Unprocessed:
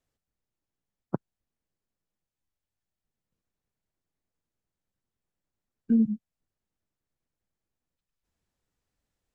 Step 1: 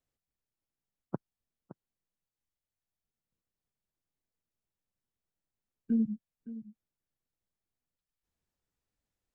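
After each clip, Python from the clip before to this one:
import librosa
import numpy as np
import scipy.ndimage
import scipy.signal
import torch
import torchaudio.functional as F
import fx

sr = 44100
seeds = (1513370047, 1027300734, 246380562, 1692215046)

y = x + 10.0 ** (-15.0 / 20.0) * np.pad(x, (int(566 * sr / 1000.0), 0))[:len(x)]
y = F.gain(torch.from_numpy(y), -6.0).numpy()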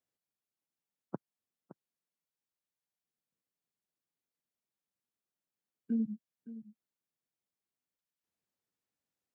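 y = scipy.signal.sosfilt(scipy.signal.butter(2, 160.0, 'highpass', fs=sr, output='sos'), x)
y = F.gain(torch.from_numpy(y), -3.0).numpy()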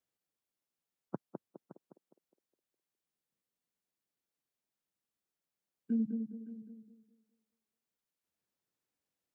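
y = fx.echo_banded(x, sr, ms=206, feedback_pct=43, hz=440.0, wet_db=-3.5)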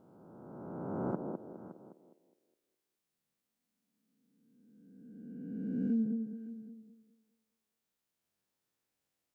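y = fx.spec_swells(x, sr, rise_s=2.21)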